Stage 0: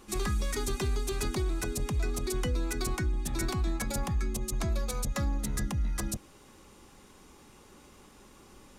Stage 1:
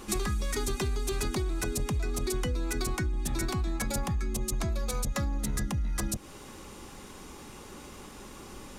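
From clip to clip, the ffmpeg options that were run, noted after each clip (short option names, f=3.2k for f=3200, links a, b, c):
-af "acompressor=threshold=-36dB:ratio=10,volume=9dB"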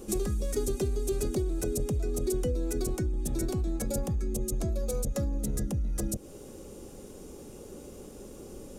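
-af "equalizer=f=500:t=o:w=1:g=9,equalizer=f=1k:t=o:w=1:g=-12,equalizer=f=2k:t=o:w=1:g=-10,equalizer=f=4k:t=o:w=1:g=-7"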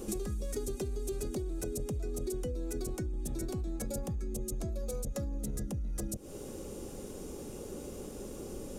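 -af "acompressor=threshold=-37dB:ratio=4,volume=2.5dB"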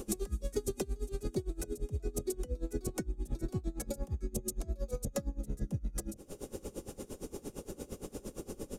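-af "aeval=exprs='val(0)*pow(10,-22*(0.5-0.5*cos(2*PI*8.7*n/s))/20)':c=same,volume=4.5dB"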